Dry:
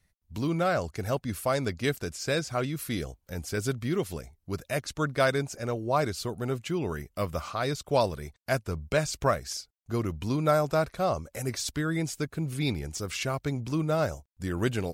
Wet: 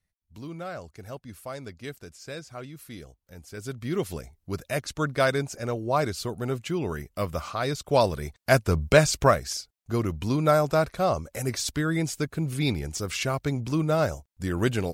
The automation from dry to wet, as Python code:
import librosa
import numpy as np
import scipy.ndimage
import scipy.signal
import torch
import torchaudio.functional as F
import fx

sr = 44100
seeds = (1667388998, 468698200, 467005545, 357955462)

y = fx.gain(x, sr, db=fx.line((3.5, -10.0), (4.0, 1.5), (7.73, 1.5), (8.83, 10.0), (9.58, 3.0)))